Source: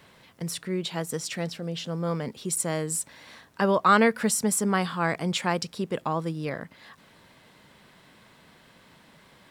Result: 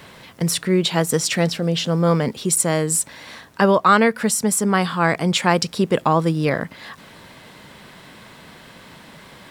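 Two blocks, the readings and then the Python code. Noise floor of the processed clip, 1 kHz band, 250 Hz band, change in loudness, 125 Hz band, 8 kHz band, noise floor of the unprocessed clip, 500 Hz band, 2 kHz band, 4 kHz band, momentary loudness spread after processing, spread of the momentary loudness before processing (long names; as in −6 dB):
−45 dBFS, +7.0 dB, +8.0 dB, +8.0 dB, +10.0 dB, +8.0 dB, −57 dBFS, +8.5 dB, +7.0 dB, +9.5 dB, 10 LU, 13 LU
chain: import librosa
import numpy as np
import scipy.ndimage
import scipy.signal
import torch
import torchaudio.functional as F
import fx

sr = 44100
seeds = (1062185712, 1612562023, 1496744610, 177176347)

y = fx.rider(x, sr, range_db=4, speed_s=0.5)
y = F.gain(torch.from_numpy(y), 8.0).numpy()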